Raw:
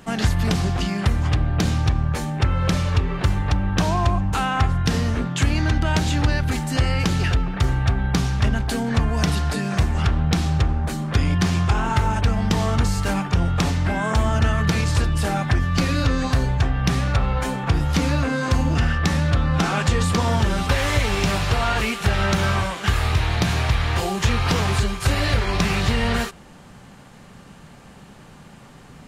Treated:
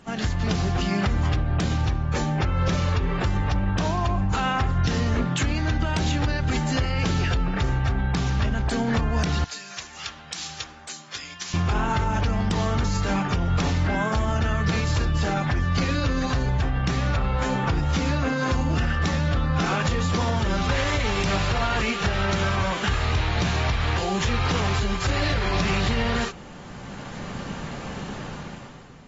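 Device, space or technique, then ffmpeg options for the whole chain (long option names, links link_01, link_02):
low-bitrate web radio: -filter_complex "[0:a]asettb=1/sr,asplit=3[link_01][link_02][link_03];[link_01]atrim=end=9.444[link_04];[link_02]atrim=start=9.44:end=11.54,asetpts=PTS-STARTPTS,afade=type=in:duration=0.004:curve=qsin,afade=type=out:start_time=2.096:duration=0.004:curve=qsin,aderivative[link_05];[link_03]atrim=start=11.536[link_06];[link_04][link_05]acrossfade=duration=0.004:curve1=hsin:curve2=qsin[link_07];[link_07][link_06]acrossfade=duration=0.004:curve1=qsin:curve2=hsin,dynaudnorm=framelen=130:gausssize=11:maxgain=16dB,alimiter=limit=-10dB:level=0:latency=1:release=81,volume=-5.5dB" -ar 32000 -c:a aac -b:a 24k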